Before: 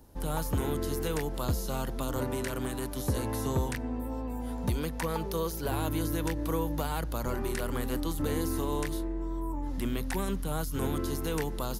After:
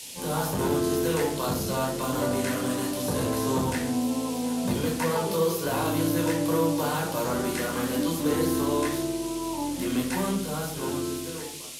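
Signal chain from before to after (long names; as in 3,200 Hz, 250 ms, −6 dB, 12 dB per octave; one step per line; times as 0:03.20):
fade-out on the ending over 1.82 s
rectangular room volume 750 cubic metres, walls furnished, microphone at 5.1 metres
noise in a band 2,300–12,000 Hz −41 dBFS
soft clipping −12 dBFS, distortion −22 dB
high-pass filter 190 Hz 12 dB per octave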